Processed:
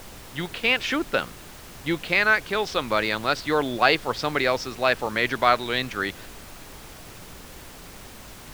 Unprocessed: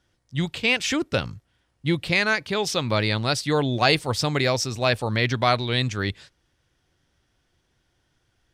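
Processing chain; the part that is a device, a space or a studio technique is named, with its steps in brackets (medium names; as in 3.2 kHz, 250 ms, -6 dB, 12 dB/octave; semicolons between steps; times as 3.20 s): horn gramophone (band-pass 270–3700 Hz; peaking EQ 1.4 kHz +5 dB; wow and flutter 19 cents; pink noise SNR 16 dB)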